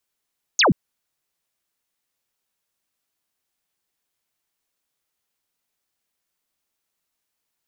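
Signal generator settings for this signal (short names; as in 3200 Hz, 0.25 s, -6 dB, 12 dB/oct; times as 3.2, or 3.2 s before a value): laser zap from 7000 Hz, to 130 Hz, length 0.13 s sine, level -12.5 dB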